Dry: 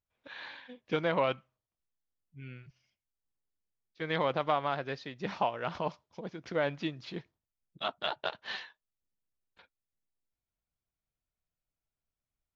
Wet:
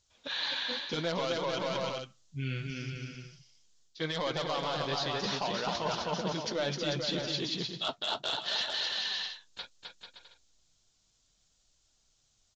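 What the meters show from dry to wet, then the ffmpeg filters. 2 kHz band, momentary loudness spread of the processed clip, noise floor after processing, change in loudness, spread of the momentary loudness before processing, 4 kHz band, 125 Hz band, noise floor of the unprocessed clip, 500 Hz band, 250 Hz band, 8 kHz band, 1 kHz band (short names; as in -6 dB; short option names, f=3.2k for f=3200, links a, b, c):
+2.0 dB, 13 LU, -72 dBFS, +1.5 dB, 18 LU, +11.0 dB, +4.5 dB, under -85 dBFS, 0.0 dB, +2.5 dB, n/a, -1.0 dB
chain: -af "aeval=exprs='0.188*sin(PI/2*1.78*val(0)/0.188)':c=same,aexciter=amount=4.1:drive=6.4:freq=3.2k,alimiter=limit=-16dB:level=0:latency=1:release=26,aresample=16000,aresample=44100,aecho=1:1:260|442|569.4|658.6|721:0.631|0.398|0.251|0.158|0.1,areverse,acompressor=threshold=-35dB:ratio=5,areverse,flanger=delay=1.8:depth=8.2:regen=-44:speed=0.68:shape=triangular,volume=8dB"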